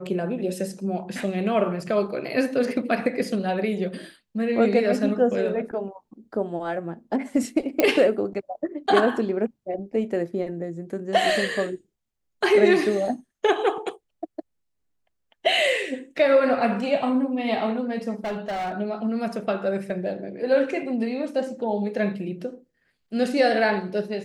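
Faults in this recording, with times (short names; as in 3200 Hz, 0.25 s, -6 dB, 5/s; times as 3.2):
7.8 pop -6 dBFS
18.24–18.74 clipped -25.5 dBFS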